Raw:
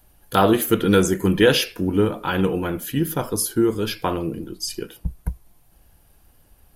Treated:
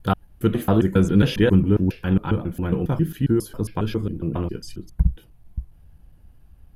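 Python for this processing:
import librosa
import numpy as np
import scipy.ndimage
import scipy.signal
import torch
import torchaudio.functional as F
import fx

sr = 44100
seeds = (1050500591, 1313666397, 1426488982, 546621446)

y = fx.block_reorder(x, sr, ms=136.0, group=3)
y = fx.bass_treble(y, sr, bass_db=13, treble_db=-9)
y = y * 10.0 ** (-6.0 / 20.0)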